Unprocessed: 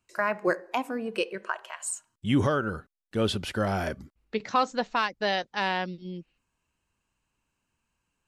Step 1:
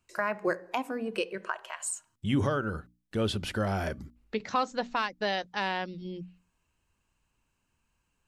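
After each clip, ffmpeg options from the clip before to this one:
ffmpeg -i in.wav -filter_complex "[0:a]lowshelf=frequency=110:gain=6,bandreject=frequency=60:width_type=h:width=6,bandreject=frequency=120:width_type=h:width=6,bandreject=frequency=180:width_type=h:width=6,bandreject=frequency=240:width_type=h:width=6,bandreject=frequency=300:width_type=h:width=6,asplit=2[link_01][link_02];[link_02]acompressor=threshold=-34dB:ratio=6,volume=2dB[link_03];[link_01][link_03]amix=inputs=2:normalize=0,volume=-6dB" out.wav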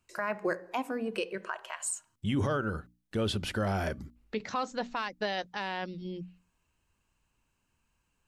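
ffmpeg -i in.wav -af "alimiter=limit=-21.5dB:level=0:latency=1:release=11" out.wav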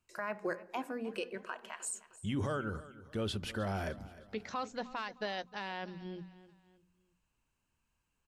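ffmpeg -i in.wav -af "aecho=1:1:308|616|924:0.133|0.0547|0.0224,volume=-5.5dB" out.wav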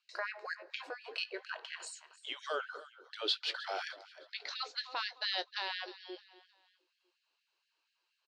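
ffmpeg -i in.wav -filter_complex "[0:a]lowpass=frequency=4300:width_type=q:width=4.6,asplit=2[link_01][link_02];[link_02]adelay=19,volume=-13dB[link_03];[link_01][link_03]amix=inputs=2:normalize=0,afftfilt=real='re*gte(b*sr/1024,290*pow(1600/290,0.5+0.5*sin(2*PI*4.2*pts/sr)))':imag='im*gte(b*sr/1024,290*pow(1600/290,0.5+0.5*sin(2*PI*4.2*pts/sr)))':win_size=1024:overlap=0.75,volume=1dB" out.wav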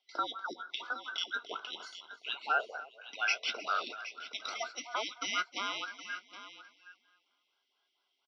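ffmpeg -i in.wav -af "afftfilt=real='real(if(between(b,1,1012),(2*floor((b-1)/92)+1)*92-b,b),0)':imag='imag(if(between(b,1,1012),(2*floor((b-1)/92)+1)*92-b,b),0)*if(between(b,1,1012),-1,1)':win_size=2048:overlap=0.75,highpass=frequency=270:width=0.5412,highpass=frequency=270:width=1.3066,equalizer=frequency=310:width_type=q:width=4:gain=-5,equalizer=frequency=500:width_type=q:width=4:gain=-5,equalizer=frequency=700:width_type=q:width=4:gain=6,equalizer=frequency=1400:width_type=q:width=4:gain=10,equalizer=frequency=2800:width_type=q:width=4:gain=3,equalizer=frequency=4200:width_type=q:width=4:gain=8,lowpass=frequency=4900:width=0.5412,lowpass=frequency=4900:width=1.3066,aecho=1:1:768:0.211" out.wav

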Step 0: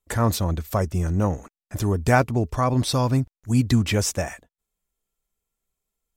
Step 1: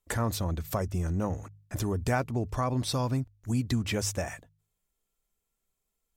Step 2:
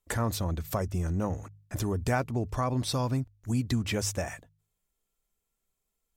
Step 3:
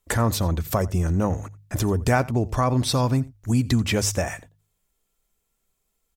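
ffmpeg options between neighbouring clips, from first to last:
ffmpeg -i in.wav -af "bandreject=frequency=51.07:width_type=h:width=4,bandreject=frequency=102.14:width_type=h:width=4,bandreject=frequency=153.21:width_type=h:width=4,acompressor=threshold=-32dB:ratio=2" out.wav
ffmpeg -i in.wav -af anull out.wav
ffmpeg -i in.wav -af "aecho=1:1:87:0.0841,volume=7.5dB" out.wav

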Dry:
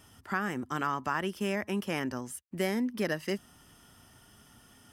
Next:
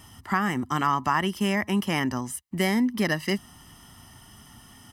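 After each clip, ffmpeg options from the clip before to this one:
ffmpeg -i in.wav -af "aecho=1:1:1:0.5,volume=6.5dB" out.wav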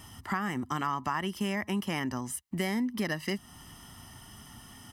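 ffmpeg -i in.wav -af "acompressor=threshold=-33dB:ratio=2" out.wav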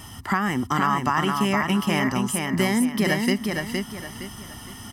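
ffmpeg -i in.wav -af "aecho=1:1:464|928|1392|1856:0.631|0.208|0.0687|0.0227,volume=8.5dB" out.wav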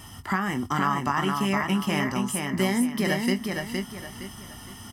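ffmpeg -i in.wav -filter_complex "[0:a]asplit=2[link_01][link_02];[link_02]adelay=21,volume=-9dB[link_03];[link_01][link_03]amix=inputs=2:normalize=0,volume=-3.5dB" out.wav

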